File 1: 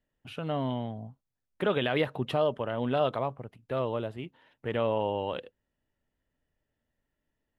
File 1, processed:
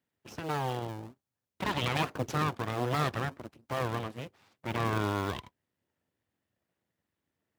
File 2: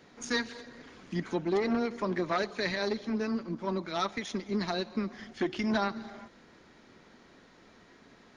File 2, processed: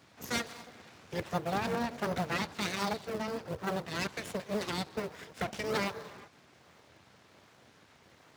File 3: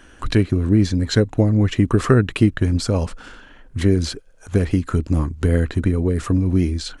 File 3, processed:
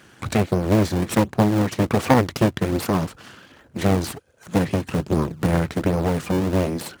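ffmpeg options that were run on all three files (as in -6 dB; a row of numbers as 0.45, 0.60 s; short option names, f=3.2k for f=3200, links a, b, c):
-filter_complex "[0:a]aeval=exprs='abs(val(0))':c=same,asplit=2[a][b];[b]acrusher=samples=38:mix=1:aa=0.000001:lfo=1:lforange=60.8:lforate=1.3,volume=-7dB[c];[a][c]amix=inputs=2:normalize=0,highpass=f=81:w=0.5412,highpass=f=81:w=1.3066"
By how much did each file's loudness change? -2.0, -3.0, -2.5 LU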